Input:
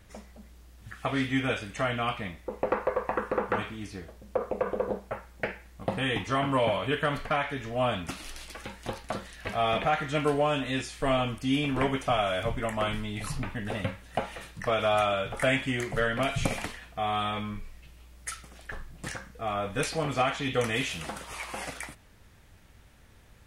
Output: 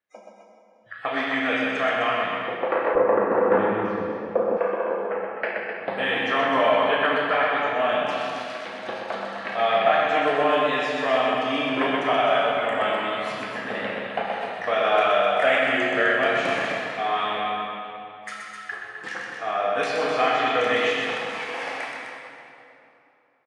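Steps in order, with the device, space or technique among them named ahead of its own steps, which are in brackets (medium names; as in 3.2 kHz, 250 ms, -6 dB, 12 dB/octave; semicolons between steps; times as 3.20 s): hum notches 50/100/150 Hz; spectral noise reduction 30 dB; station announcement (band-pass 360–3900 Hz; peaking EQ 1.7 kHz +5.5 dB 0.24 oct; loudspeakers at several distances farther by 12 m -9 dB, 43 m -5 dB, 88 m -7 dB; reverberation RT60 2.9 s, pre-delay 20 ms, DRR 0.5 dB); 2.95–4.57 s: tilt EQ -4.5 dB/octave; trim +2.5 dB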